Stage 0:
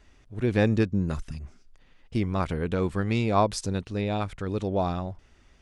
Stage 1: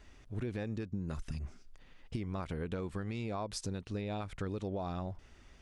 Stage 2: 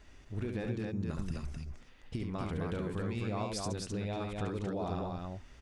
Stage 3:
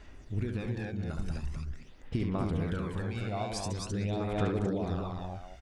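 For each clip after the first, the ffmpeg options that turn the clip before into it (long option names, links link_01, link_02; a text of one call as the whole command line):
ffmpeg -i in.wav -af "alimiter=limit=-21dB:level=0:latency=1:release=275,acompressor=threshold=-34dB:ratio=6" out.wav
ffmpeg -i in.wav -af "aecho=1:1:69.97|259.5:0.562|0.708" out.wav
ffmpeg -i in.wav -filter_complex "[0:a]asplit=2[link_01][link_02];[link_02]adelay=190,highpass=300,lowpass=3400,asoftclip=type=hard:threshold=-30dB,volume=-6dB[link_03];[link_01][link_03]amix=inputs=2:normalize=0,aphaser=in_gain=1:out_gain=1:delay=1.4:decay=0.51:speed=0.45:type=sinusoidal" out.wav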